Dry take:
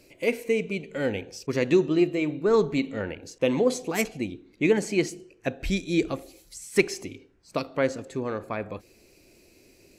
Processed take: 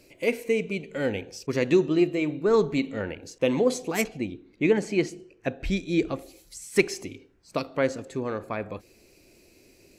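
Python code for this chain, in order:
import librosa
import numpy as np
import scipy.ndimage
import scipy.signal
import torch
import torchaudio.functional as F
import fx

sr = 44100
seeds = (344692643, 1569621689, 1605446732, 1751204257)

y = fx.lowpass(x, sr, hz=3900.0, slope=6, at=(4.04, 6.19))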